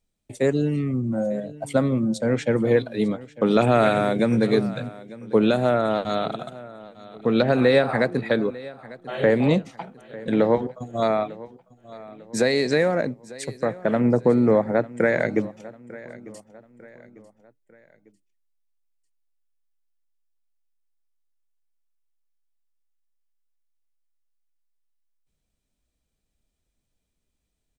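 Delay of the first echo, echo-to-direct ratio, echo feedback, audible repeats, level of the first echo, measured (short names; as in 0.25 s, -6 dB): 0.898 s, -18.0 dB, 42%, 3, -19.0 dB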